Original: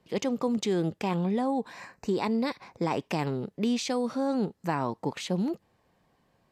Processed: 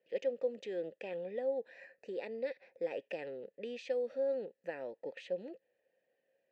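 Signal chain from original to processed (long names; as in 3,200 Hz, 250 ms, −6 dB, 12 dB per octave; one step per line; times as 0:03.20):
formant filter e
low-shelf EQ 170 Hz −6.5 dB
level +1 dB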